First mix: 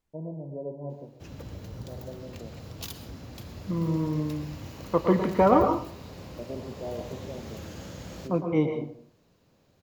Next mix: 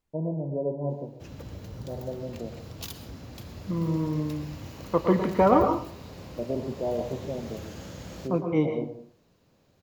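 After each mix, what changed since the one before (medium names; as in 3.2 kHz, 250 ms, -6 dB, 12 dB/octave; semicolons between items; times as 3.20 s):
first voice +7.0 dB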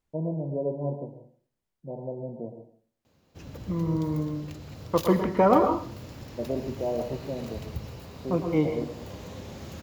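background: entry +2.15 s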